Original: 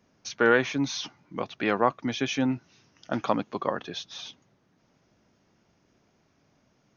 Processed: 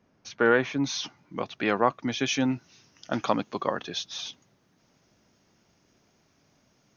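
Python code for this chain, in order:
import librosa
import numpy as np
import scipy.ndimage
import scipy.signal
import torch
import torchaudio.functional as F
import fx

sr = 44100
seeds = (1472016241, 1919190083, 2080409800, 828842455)

y = fx.high_shelf(x, sr, hz=3900.0, db=fx.steps((0.0, -9.0), (0.84, 2.5), (2.2, 8.5)))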